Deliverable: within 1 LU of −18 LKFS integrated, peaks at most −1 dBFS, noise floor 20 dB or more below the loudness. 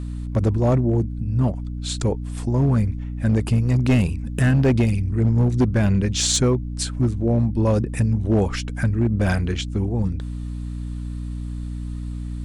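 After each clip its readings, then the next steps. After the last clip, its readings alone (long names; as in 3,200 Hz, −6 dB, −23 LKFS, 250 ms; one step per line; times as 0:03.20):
share of clipped samples 1.9%; peaks flattened at −12.0 dBFS; mains hum 60 Hz; hum harmonics up to 300 Hz; level of the hum −26 dBFS; integrated loudness −22.0 LKFS; sample peak −12.0 dBFS; target loudness −18.0 LKFS
→ clipped peaks rebuilt −12 dBFS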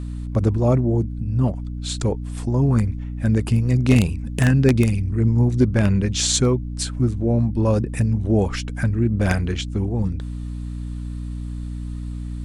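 share of clipped samples 0.0%; mains hum 60 Hz; hum harmonics up to 300 Hz; level of the hum −26 dBFS
→ hum removal 60 Hz, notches 5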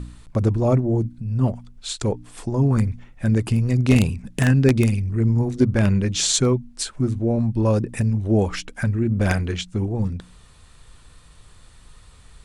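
mains hum none found; integrated loudness −21.5 LKFS; sample peak −2.5 dBFS; target loudness −18.0 LKFS
→ level +3.5 dB
brickwall limiter −1 dBFS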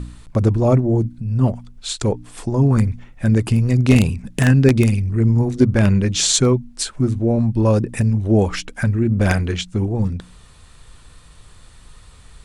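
integrated loudness −18.0 LKFS; sample peak −1.0 dBFS; background noise floor −46 dBFS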